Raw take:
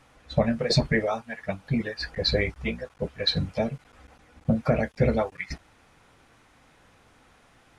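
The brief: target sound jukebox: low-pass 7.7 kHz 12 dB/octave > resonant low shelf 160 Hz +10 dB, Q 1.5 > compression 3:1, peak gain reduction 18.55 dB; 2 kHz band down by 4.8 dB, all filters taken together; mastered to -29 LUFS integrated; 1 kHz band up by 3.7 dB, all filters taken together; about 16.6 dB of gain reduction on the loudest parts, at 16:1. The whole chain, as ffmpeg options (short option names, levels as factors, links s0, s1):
-af "equalizer=f=1000:t=o:g=7.5,equalizer=f=2000:t=o:g=-7.5,acompressor=threshold=0.0224:ratio=16,lowpass=7700,lowshelf=f=160:t=q:w=1.5:g=10,acompressor=threshold=0.00447:ratio=3,volume=10.6"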